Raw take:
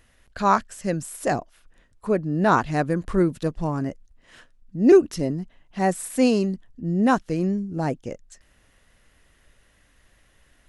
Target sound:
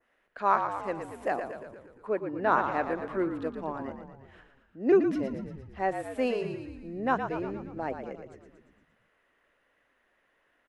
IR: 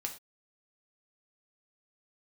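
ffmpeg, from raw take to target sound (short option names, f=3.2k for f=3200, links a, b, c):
-filter_complex "[0:a]acrossover=split=290 2600:gain=0.0631 1 0.112[a][b][c];[a][b][c]amix=inputs=3:normalize=0,asplit=9[d][e][f][g][h][i][j][k][l];[e]adelay=116,afreqshift=-46,volume=-7.5dB[m];[f]adelay=232,afreqshift=-92,volume=-11.8dB[n];[g]adelay=348,afreqshift=-138,volume=-16.1dB[o];[h]adelay=464,afreqshift=-184,volume=-20.4dB[p];[i]adelay=580,afreqshift=-230,volume=-24.7dB[q];[j]adelay=696,afreqshift=-276,volume=-29dB[r];[k]adelay=812,afreqshift=-322,volume=-33.3dB[s];[l]adelay=928,afreqshift=-368,volume=-37.6dB[t];[d][m][n][o][p][q][r][s][t]amix=inputs=9:normalize=0,adynamicequalizer=threshold=0.00708:dfrequency=3100:dqfactor=1.1:tfrequency=3100:tqfactor=1.1:attack=5:release=100:ratio=0.375:range=2.5:mode=boostabove:tftype=bell,volume=-5.5dB"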